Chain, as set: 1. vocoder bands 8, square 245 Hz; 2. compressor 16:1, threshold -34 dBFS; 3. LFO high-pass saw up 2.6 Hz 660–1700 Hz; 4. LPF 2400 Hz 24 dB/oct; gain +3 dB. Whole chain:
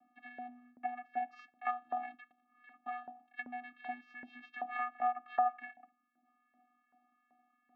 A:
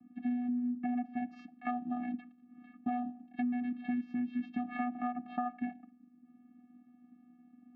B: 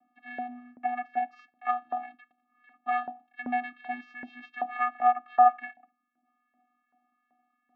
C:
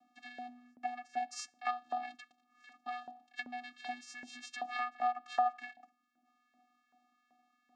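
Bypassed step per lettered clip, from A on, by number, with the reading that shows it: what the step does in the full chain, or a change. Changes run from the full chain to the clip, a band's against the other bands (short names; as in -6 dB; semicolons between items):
3, 250 Hz band +26.0 dB; 2, mean gain reduction 6.5 dB; 4, momentary loudness spread change -1 LU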